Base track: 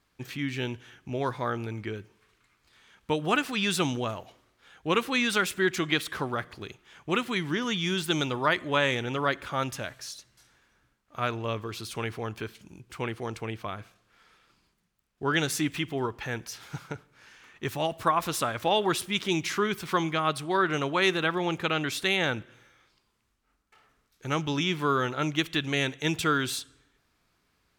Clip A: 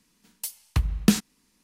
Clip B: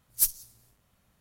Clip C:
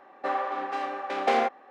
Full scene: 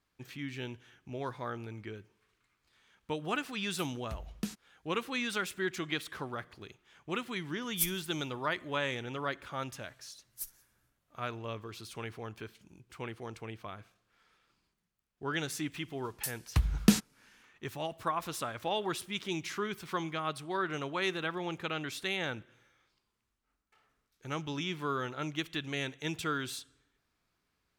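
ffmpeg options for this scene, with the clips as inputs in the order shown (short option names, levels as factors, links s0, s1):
-filter_complex "[1:a]asplit=2[s0][s1];[2:a]asplit=2[s2][s3];[0:a]volume=0.376[s4];[s3]acompressor=mode=upward:threshold=0.002:ratio=2.5:attack=3.2:release=140:knee=2.83:detection=peak[s5];[s0]atrim=end=1.63,asetpts=PTS-STARTPTS,volume=0.126,afade=t=in:d=0.004:c=hsin,afade=t=out:st=1.626:d=0.004:c=hsin,adelay=3350[s6];[s2]atrim=end=1.2,asetpts=PTS-STARTPTS,volume=0.422,afade=t=in:d=0.004:c=hsin,afade=t=out:st=1.196:d=0.004:c=hsin,adelay=7590[s7];[s5]atrim=end=1.2,asetpts=PTS-STARTPTS,volume=0.133,afade=t=in:d=0.004:c=hsin,afade=t=out:st=1.196:d=0.004:c=hsin,adelay=10190[s8];[s1]atrim=end=1.63,asetpts=PTS-STARTPTS,volume=0.631,afade=t=in:d=0.004:c=hsin,afade=t=out:st=1.626:d=0.004:c=hsin,adelay=15800[s9];[s4][s6][s7][s8][s9]amix=inputs=5:normalize=0"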